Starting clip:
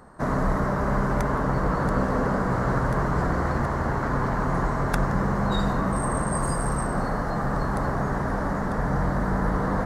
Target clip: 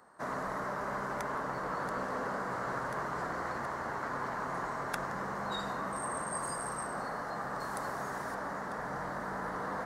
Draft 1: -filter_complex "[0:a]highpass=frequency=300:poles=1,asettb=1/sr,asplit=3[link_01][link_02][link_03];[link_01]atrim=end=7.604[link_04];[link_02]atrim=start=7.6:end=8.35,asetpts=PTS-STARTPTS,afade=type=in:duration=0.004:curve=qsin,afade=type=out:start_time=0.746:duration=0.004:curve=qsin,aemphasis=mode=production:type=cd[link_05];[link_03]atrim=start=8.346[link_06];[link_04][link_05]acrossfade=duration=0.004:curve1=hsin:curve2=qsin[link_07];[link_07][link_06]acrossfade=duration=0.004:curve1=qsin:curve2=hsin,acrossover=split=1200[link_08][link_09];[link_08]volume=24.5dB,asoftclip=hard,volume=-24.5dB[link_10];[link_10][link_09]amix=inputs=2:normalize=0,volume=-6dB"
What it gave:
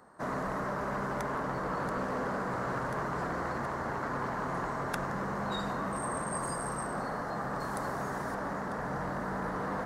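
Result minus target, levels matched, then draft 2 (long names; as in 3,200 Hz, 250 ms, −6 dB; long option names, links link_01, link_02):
250 Hz band +3.5 dB
-filter_complex "[0:a]highpass=frequency=760:poles=1,asettb=1/sr,asplit=3[link_01][link_02][link_03];[link_01]atrim=end=7.604[link_04];[link_02]atrim=start=7.6:end=8.35,asetpts=PTS-STARTPTS,afade=type=in:duration=0.004:curve=qsin,afade=type=out:start_time=0.746:duration=0.004:curve=qsin,aemphasis=mode=production:type=cd[link_05];[link_03]atrim=start=8.346[link_06];[link_04][link_05]acrossfade=duration=0.004:curve1=hsin:curve2=qsin[link_07];[link_07][link_06]acrossfade=duration=0.004:curve1=qsin:curve2=hsin,acrossover=split=1200[link_08][link_09];[link_08]volume=24.5dB,asoftclip=hard,volume=-24.5dB[link_10];[link_10][link_09]amix=inputs=2:normalize=0,volume=-6dB"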